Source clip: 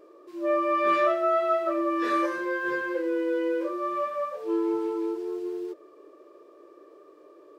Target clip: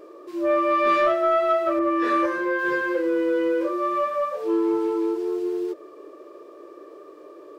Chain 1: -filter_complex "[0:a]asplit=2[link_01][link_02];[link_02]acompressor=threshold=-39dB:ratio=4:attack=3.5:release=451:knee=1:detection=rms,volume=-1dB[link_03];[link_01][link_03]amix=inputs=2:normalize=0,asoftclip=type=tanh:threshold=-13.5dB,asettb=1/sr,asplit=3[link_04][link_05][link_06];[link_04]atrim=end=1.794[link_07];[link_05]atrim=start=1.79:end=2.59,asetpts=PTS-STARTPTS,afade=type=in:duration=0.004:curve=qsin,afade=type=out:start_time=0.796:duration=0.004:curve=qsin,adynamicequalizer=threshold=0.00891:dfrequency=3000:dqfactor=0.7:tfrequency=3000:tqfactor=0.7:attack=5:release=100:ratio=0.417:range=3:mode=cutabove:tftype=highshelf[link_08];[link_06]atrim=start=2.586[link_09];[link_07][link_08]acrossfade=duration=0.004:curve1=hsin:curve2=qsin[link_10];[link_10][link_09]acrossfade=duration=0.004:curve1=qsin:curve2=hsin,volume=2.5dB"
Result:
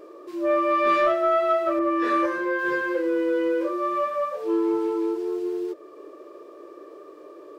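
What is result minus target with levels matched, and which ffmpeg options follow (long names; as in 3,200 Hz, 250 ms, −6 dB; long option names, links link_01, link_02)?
downward compressor: peak gain reduction +5.5 dB
-filter_complex "[0:a]asplit=2[link_01][link_02];[link_02]acompressor=threshold=-31.5dB:ratio=4:attack=3.5:release=451:knee=1:detection=rms,volume=-1dB[link_03];[link_01][link_03]amix=inputs=2:normalize=0,asoftclip=type=tanh:threshold=-13.5dB,asettb=1/sr,asplit=3[link_04][link_05][link_06];[link_04]atrim=end=1.794[link_07];[link_05]atrim=start=1.79:end=2.59,asetpts=PTS-STARTPTS,afade=type=in:duration=0.004:curve=qsin,afade=type=out:start_time=0.796:duration=0.004:curve=qsin,adynamicequalizer=threshold=0.00891:dfrequency=3000:dqfactor=0.7:tfrequency=3000:tqfactor=0.7:attack=5:release=100:ratio=0.417:range=3:mode=cutabove:tftype=highshelf[link_08];[link_06]atrim=start=2.586[link_09];[link_07][link_08]acrossfade=duration=0.004:curve1=hsin:curve2=qsin[link_10];[link_10][link_09]acrossfade=duration=0.004:curve1=qsin:curve2=hsin,volume=2.5dB"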